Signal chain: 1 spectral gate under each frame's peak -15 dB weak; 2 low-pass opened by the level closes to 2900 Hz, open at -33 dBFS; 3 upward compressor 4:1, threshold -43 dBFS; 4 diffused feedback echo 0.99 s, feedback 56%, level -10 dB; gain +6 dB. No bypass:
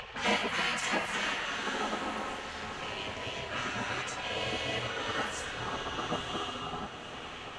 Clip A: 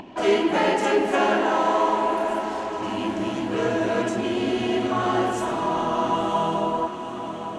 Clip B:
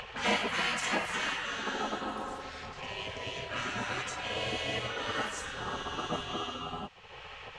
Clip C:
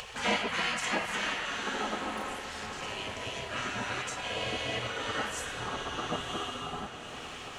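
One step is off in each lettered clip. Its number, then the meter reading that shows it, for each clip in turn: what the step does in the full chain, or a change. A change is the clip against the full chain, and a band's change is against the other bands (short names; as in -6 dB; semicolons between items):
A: 1, 250 Hz band +10.5 dB; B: 4, echo-to-direct -8.5 dB to none; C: 2, 8 kHz band +2.0 dB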